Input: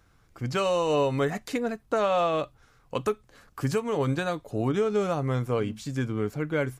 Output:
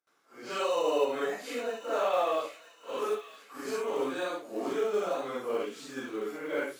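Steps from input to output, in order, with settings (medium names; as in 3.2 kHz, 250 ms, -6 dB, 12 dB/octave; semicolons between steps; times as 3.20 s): phase randomisation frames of 200 ms; high-pass 300 Hz 24 dB/octave; gate with hold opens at -57 dBFS; in parallel at -9 dB: short-mantissa float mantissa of 2-bit; on the sum: feedback echo behind a high-pass 963 ms, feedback 36%, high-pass 1.9 kHz, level -9 dB; on a send at -23 dB: reverberation RT60 1.1 s, pre-delay 3 ms; on the sum: trim -6 dB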